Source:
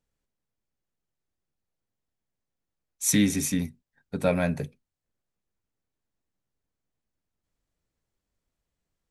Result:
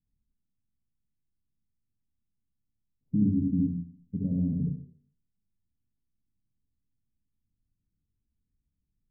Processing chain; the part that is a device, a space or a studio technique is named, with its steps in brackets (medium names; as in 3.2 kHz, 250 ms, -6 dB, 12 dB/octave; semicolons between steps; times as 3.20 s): bass shelf 250 Hz -8 dB; club heard from the street (peak limiter -17 dBFS, peak gain reduction 6 dB; low-pass 220 Hz 24 dB/octave; reverberation RT60 0.55 s, pre-delay 54 ms, DRR -2 dB); trim +7 dB